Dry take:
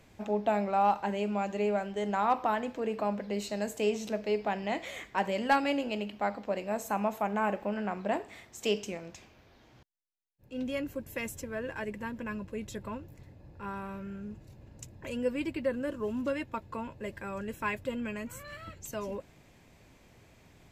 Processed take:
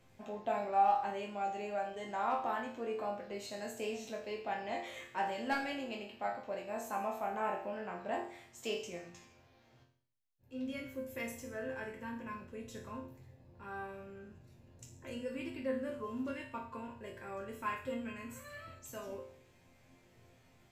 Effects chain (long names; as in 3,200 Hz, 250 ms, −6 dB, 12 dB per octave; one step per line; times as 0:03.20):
resonators tuned to a chord F2 sus4, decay 0.55 s
level +9.5 dB